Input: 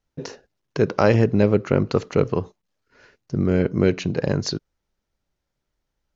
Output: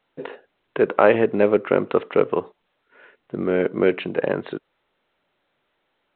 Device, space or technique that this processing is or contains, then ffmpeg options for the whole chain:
telephone: -af "highpass=360,lowpass=3200,volume=4dB" -ar 8000 -c:a pcm_alaw

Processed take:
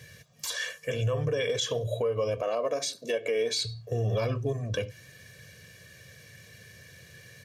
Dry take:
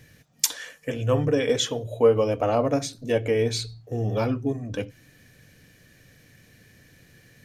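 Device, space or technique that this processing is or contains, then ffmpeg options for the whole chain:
broadcast voice chain: -filter_complex "[0:a]asettb=1/sr,asplit=3[link_01][link_02][link_03];[link_01]atrim=end=2.424[link_04];[link_02]atrim=start=2.42:end=3.65,asetpts=PTS-STARTPTS,afade=type=in:duration=0.004:curve=qsin,afade=type=out:start_time=1.226:duration=0.004:curve=qsin,highpass=frequency=220:width=0.5412,highpass=frequency=220:width=1.3066[link_05];[link_03]atrim=start=3.646[link_06];[link_04][link_05]acrossfade=duration=0.004:curve1=hsin:curve2=qsin[link_07];[link_07][link_06]acrossfade=duration=0.004:curve1=qsin:curve2=hsin,highpass=frequency=71:width=0.5412,highpass=frequency=71:width=1.3066,aecho=1:1:1.8:0.72,deesser=0.4,acompressor=threshold=-23dB:ratio=5,equalizer=frequency=4400:width_type=o:width=2.4:gain=4.5,alimiter=limit=-20dB:level=0:latency=1:release=50"

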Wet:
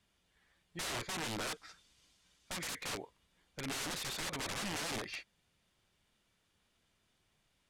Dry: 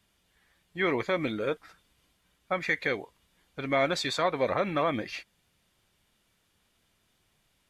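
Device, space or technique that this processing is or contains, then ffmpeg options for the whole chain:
overflowing digital effects unit: -filter_complex "[0:a]asettb=1/sr,asplit=3[link_01][link_02][link_03];[link_01]atrim=end=1.434[link_04];[link_02]atrim=start=1.43:end=2.76,asetpts=PTS-STARTPTS,afade=type=in:duration=0.004:curve=qsin,afade=type=out:start_time=1.326:duration=0.004:curve=qsin,equalizer=frequency=5900:width_type=o:width=1.8:gain=11.5[link_05];[link_03]atrim=start=2.756[link_06];[link_04][link_05]acrossfade=duration=0.004:curve1=hsin:curve2=qsin[link_07];[link_07][link_06]acrossfade=duration=0.004:curve1=qsin:curve2=hsin,aeval=exprs='(mod(26.6*val(0)+1,2)-1)/26.6':channel_layout=same,lowpass=10000,volume=-5dB"

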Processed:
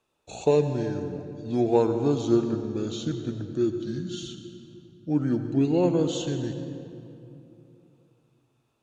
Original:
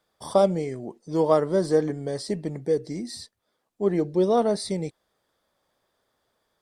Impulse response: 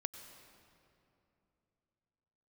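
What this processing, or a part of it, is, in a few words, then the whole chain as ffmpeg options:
slowed and reverbed: -filter_complex "[0:a]asetrate=33075,aresample=44100[link_01];[1:a]atrim=start_sample=2205[link_02];[link_01][link_02]afir=irnorm=-1:irlink=0"

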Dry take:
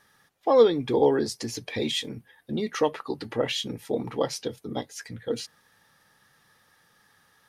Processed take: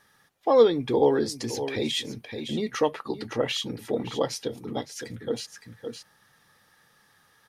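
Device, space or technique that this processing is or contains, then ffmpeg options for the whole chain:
ducked delay: -filter_complex "[0:a]asplit=3[link_01][link_02][link_03];[link_02]adelay=563,volume=-7dB[link_04];[link_03]apad=whole_len=355126[link_05];[link_04][link_05]sidechaincompress=threshold=-34dB:ratio=8:attack=7:release=231[link_06];[link_01][link_06]amix=inputs=2:normalize=0"

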